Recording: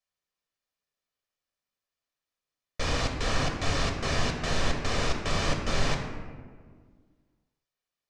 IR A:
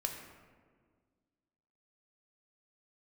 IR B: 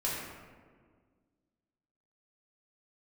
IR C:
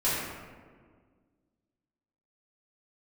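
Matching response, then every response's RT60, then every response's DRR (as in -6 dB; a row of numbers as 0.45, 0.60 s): A; 1.7, 1.7, 1.7 s; 2.5, -7.0, -11.5 dB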